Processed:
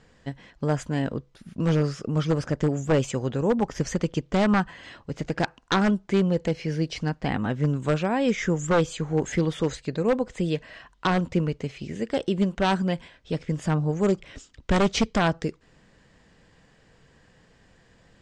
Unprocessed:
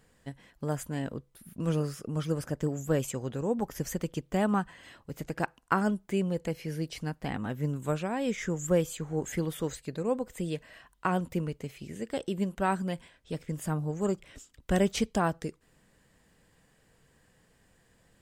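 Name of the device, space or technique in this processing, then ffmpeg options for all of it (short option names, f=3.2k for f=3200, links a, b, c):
synthesiser wavefolder: -af "aeval=exprs='0.0891*(abs(mod(val(0)/0.0891+3,4)-2)-1)':c=same,lowpass=f=6.4k:w=0.5412,lowpass=f=6.4k:w=1.3066,volume=7.5dB"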